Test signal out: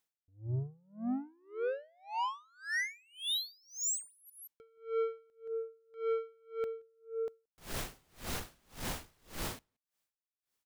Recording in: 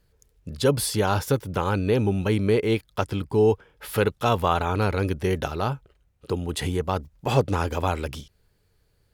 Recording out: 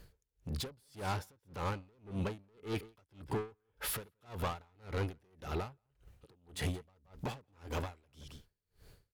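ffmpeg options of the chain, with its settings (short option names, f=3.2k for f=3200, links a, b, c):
-filter_complex "[0:a]acompressor=threshold=-43dB:ratio=2,asoftclip=type=tanh:threshold=-39dB,asplit=2[a][b];[b]adelay=174.9,volume=-14dB,highshelf=f=4k:g=-3.94[c];[a][c]amix=inputs=2:normalize=0,aeval=exprs='val(0)*pow(10,-36*(0.5-0.5*cos(2*PI*1.8*n/s))/20)':c=same,volume=9dB"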